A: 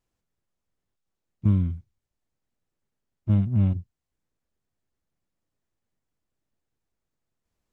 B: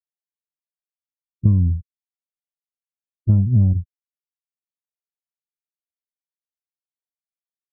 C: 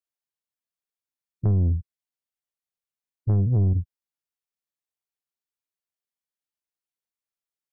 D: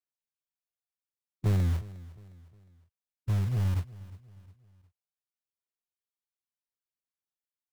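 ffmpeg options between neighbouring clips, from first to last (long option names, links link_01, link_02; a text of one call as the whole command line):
ffmpeg -i in.wav -af "lowshelf=frequency=160:gain=11,afftfilt=real='re*gte(hypot(re,im),0.0158)':imag='im*gte(hypot(re,im),0.0158)':win_size=1024:overlap=0.75,acompressor=threshold=-16dB:ratio=4,volume=4dB" out.wav
ffmpeg -i in.wav -af "asoftclip=type=tanh:threshold=-16.5dB" out.wav
ffmpeg -i in.wav -filter_complex "[0:a]aphaser=in_gain=1:out_gain=1:delay=1.4:decay=0.39:speed=0.7:type=sinusoidal,acrossover=split=130|260[link_01][link_02][link_03];[link_01]acrusher=bits=3:mode=log:mix=0:aa=0.000001[link_04];[link_04][link_02][link_03]amix=inputs=3:normalize=0,aecho=1:1:358|716|1074:0.112|0.0471|0.0198,volume=-9dB" out.wav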